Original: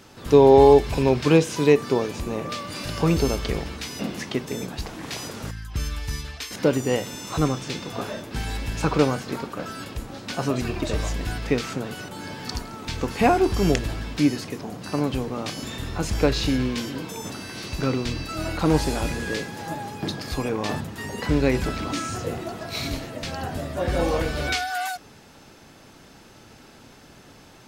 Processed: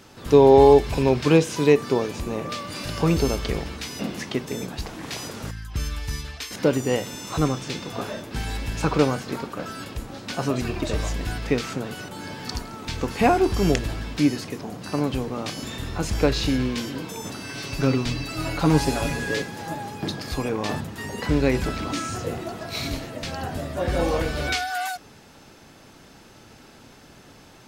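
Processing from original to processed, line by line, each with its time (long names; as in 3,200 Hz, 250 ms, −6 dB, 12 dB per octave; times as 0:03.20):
0:17.43–0:19.42: comb filter 7.2 ms, depth 63%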